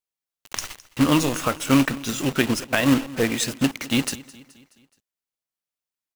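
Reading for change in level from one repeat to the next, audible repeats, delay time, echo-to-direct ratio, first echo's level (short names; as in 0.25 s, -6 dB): -6.0 dB, 3, 0.212 s, -18.5 dB, -20.0 dB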